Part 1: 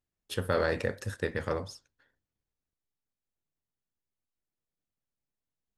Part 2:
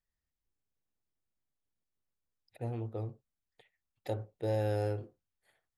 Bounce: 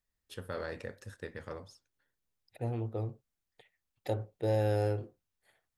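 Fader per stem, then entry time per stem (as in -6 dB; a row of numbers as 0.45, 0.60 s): -11.0, +2.5 dB; 0.00, 0.00 s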